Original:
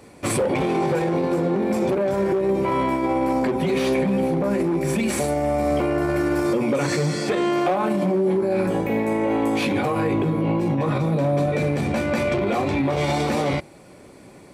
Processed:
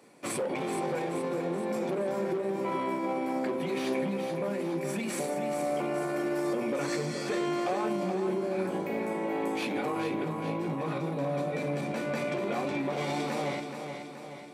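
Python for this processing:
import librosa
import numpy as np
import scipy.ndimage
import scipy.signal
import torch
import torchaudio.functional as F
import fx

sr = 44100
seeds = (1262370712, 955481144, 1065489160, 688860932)

y = scipy.signal.sosfilt(scipy.signal.butter(4, 140.0, 'highpass', fs=sr, output='sos'), x)
y = fx.low_shelf(y, sr, hz=280.0, db=-4.5)
y = fx.echo_feedback(y, sr, ms=426, feedback_pct=55, wet_db=-7.5)
y = y * librosa.db_to_amplitude(-9.0)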